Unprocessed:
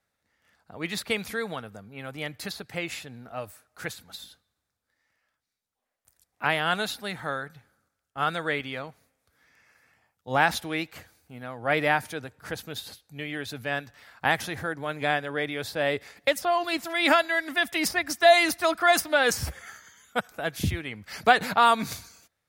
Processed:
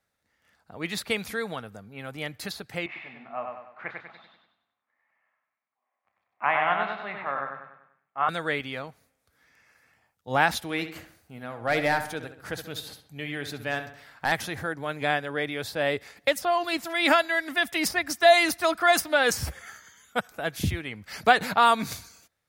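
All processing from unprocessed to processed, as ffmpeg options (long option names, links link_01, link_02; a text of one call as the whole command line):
ffmpeg -i in.wav -filter_complex "[0:a]asettb=1/sr,asplit=3[link_01][link_02][link_03];[link_01]atrim=end=2.864[link_04];[link_02]atrim=start=2.86:end=8.29,asetpts=PTS-STARTPTS,afade=type=in:duration=0.004:curve=qsin,afade=type=out:start_time=5.426:duration=0.004:curve=qsin,highpass=280,equalizer=frequency=300:width_type=q:width=4:gain=-7,equalizer=frequency=460:width_type=q:width=4:gain=-9,equalizer=frequency=730:width_type=q:width=4:gain=3,equalizer=frequency=1100:width_type=q:width=4:gain=8,equalizer=frequency=1500:width_type=q:width=4:gain=-6,equalizer=frequency=2200:width_type=q:width=4:gain=4,lowpass=frequency=2300:width=0.5412,lowpass=frequency=2300:width=1.3066,asplit=2[link_05][link_06];[link_06]adelay=29,volume=-10.5dB[link_07];[link_05][link_07]amix=inputs=2:normalize=0,atrim=end_sample=239463,aecho=1:1:97|194|291|388|485|582:0.631|0.284|0.128|0.0575|0.0259|0.0116,atrim=end_sample=239463[link_08];[link_03]atrim=start=8.286[link_09];[link_04][link_08]acrossfade=duration=0.004:curve1=hsin:curve2=qsin[link_10];[link_10][link_09]acrossfade=duration=0.004:curve1=qsin:curve2=hsin,asettb=1/sr,asplit=3[link_11][link_12][link_13];[link_11]atrim=end=10.624[link_14];[link_12]atrim=start=10.62:end=14.32,asetpts=PTS-STARTPTS,afade=type=in:duration=0.004:curve=qsin,afade=type=out:start_time=3.696:duration=0.004:curve=qsin,asoftclip=type=hard:threshold=-16.5dB,asplit=2[link_15][link_16];[link_16]adelay=68,lowpass=frequency=3400:poles=1,volume=-9.5dB,asplit=2[link_17][link_18];[link_18]adelay=68,lowpass=frequency=3400:poles=1,volume=0.49,asplit=2[link_19][link_20];[link_20]adelay=68,lowpass=frequency=3400:poles=1,volume=0.49,asplit=2[link_21][link_22];[link_22]adelay=68,lowpass=frequency=3400:poles=1,volume=0.49,asplit=2[link_23][link_24];[link_24]adelay=68,lowpass=frequency=3400:poles=1,volume=0.49[link_25];[link_15][link_17][link_19][link_21][link_23][link_25]amix=inputs=6:normalize=0,atrim=end_sample=163170[link_26];[link_13]atrim=start=14.316[link_27];[link_14][link_26]acrossfade=duration=0.004:curve1=hsin:curve2=qsin[link_28];[link_28][link_27]acrossfade=duration=0.004:curve1=qsin:curve2=hsin" out.wav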